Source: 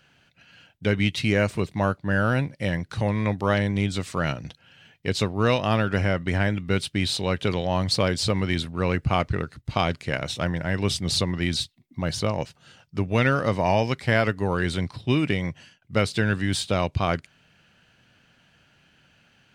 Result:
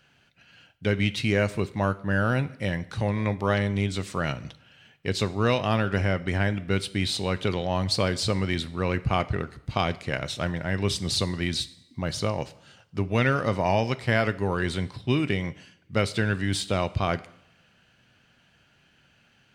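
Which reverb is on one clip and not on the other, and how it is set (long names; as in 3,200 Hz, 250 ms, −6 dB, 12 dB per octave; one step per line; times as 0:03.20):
coupled-rooms reverb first 0.68 s, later 2.1 s, from −23 dB, DRR 14.5 dB
level −2 dB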